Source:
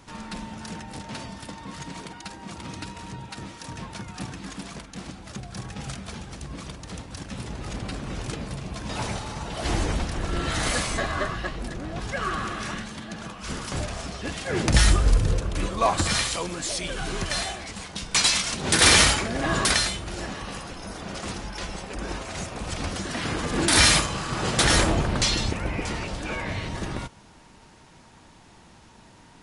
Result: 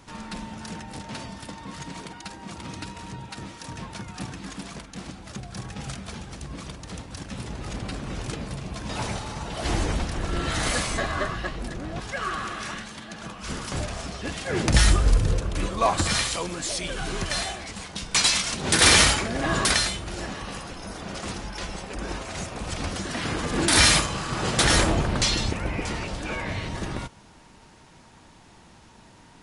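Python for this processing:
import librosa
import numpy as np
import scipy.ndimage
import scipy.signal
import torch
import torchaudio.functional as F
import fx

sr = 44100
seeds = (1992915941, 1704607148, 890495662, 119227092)

y = fx.low_shelf(x, sr, hz=430.0, db=-6.0, at=(12.0, 13.23))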